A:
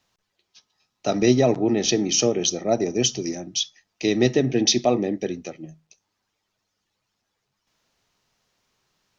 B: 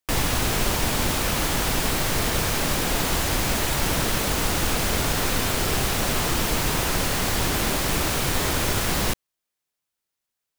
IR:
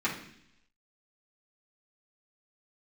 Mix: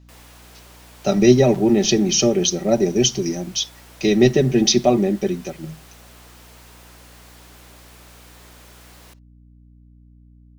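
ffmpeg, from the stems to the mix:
-filter_complex "[0:a]lowshelf=f=180:g=9.5,aecho=1:1:5.2:0.69,volume=1.06[s0];[1:a]highpass=370,asoftclip=type=tanh:threshold=0.0596,volume=0.112[s1];[s0][s1]amix=inputs=2:normalize=0,aeval=exprs='val(0)+0.00447*(sin(2*PI*60*n/s)+sin(2*PI*2*60*n/s)/2+sin(2*PI*3*60*n/s)/3+sin(2*PI*4*60*n/s)/4+sin(2*PI*5*60*n/s)/5)':c=same"

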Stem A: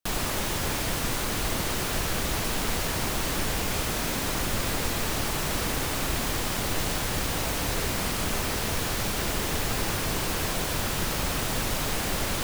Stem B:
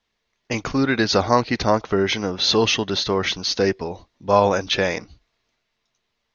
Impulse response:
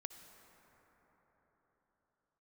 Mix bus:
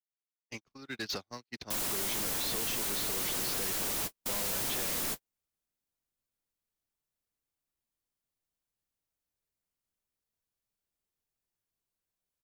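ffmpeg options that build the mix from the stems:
-filter_complex "[0:a]crystalizer=i=2:c=0,adelay=1650,volume=1.12[s0];[1:a]aeval=exprs='sgn(val(0))*max(abs(val(0))-0.0075,0)':c=same,acrossover=split=360|2400[s1][s2][s3];[s1]acompressor=threshold=0.0355:ratio=4[s4];[s2]acompressor=threshold=0.0282:ratio=4[s5];[s3]acompressor=threshold=0.0891:ratio=4[s6];[s4][s5][s6]amix=inputs=3:normalize=0,volume=0.75,asplit=2[s7][s8];[s8]apad=whole_len=621130[s9];[s0][s9]sidechaingate=range=0.112:threshold=0.00316:ratio=16:detection=peak[s10];[s10][s7]amix=inputs=2:normalize=0,acrossover=split=160|980[s11][s12][s13];[s11]acompressor=threshold=0.00708:ratio=4[s14];[s12]acompressor=threshold=0.0251:ratio=4[s15];[s13]acompressor=threshold=0.0631:ratio=4[s16];[s14][s15][s16]amix=inputs=3:normalize=0,agate=range=0.00316:threshold=0.0398:ratio=16:detection=peak,asoftclip=type=tanh:threshold=0.0282"

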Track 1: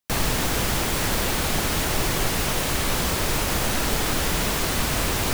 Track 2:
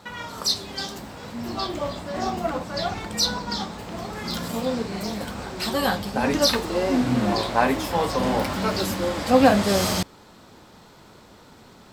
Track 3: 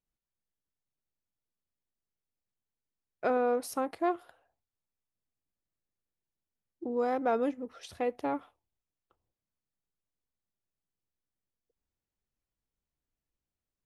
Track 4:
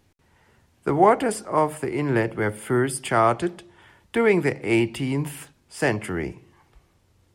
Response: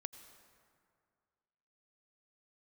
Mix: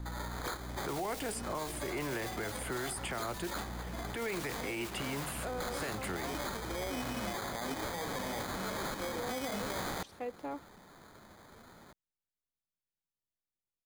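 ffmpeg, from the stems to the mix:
-filter_complex "[0:a]asoftclip=type=hard:threshold=0.0398,volume=0.266[s0];[1:a]aemphasis=mode=production:type=75fm,acrusher=samples=16:mix=1:aa=0.000001,volume=0.335[s1];[2:a]adelay=2200,volume=0.398[s2];[3:a]aeval=exprs='val(0)+0.0178*(sin(2*PI*60*n/s)+sin(2*PI*2*60*n/s)/2+sin(2*PI*3*60*n/s)/3+sin(2*PI*4*60*n/s)/4+sin(2*PI*5*60*n/s)/5)':c=same,volume=0.668,asplit=2[s3][s4];[s4]apad=whole_len=235324[s5];[s0][s5]sidechaingate=range=0.0224:threshold=0.0447:ratio=16:detection=peak[s6];[s6][s1][s2][s3]amix=inputs=4:normalize=0,acrossover=split=470|2600[s7][s8][s9];[s7]acompressor=threshold=0.0112:ratio=4[s10];[s8]acompressor=threshold=0.0178:ratio=4[s11];[s9]acompressor=threshold=0.0141:ratio=4[s12];[s10][s11][s12]amix=inputs=3:normalize=0,alimiter=level_in=1.58:limit=0.0631:level=0:latency=1:release=25,volume=0.631"

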